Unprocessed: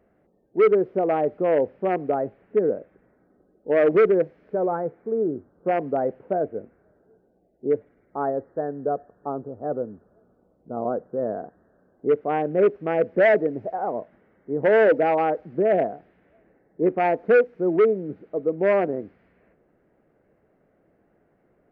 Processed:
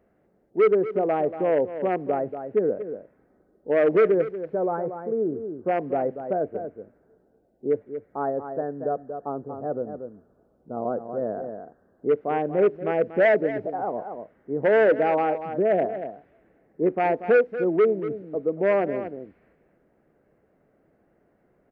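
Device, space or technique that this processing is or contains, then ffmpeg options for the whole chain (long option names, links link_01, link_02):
ducked delay: -filter_complex "[0:a]asplit=3[link_01][link_02][link_03];[link_02]adelay=235,volume=-6.5dB[link_04];[link_03]apad=whole_len=968130[link_05];[link_04][link_05]sidechaincompress=threshold=-24dB:ratio=8:attack=9.1:release=592[link_06];[link_01][link_06]amix=inputs=2:normalize=0,volume=-1.5dB"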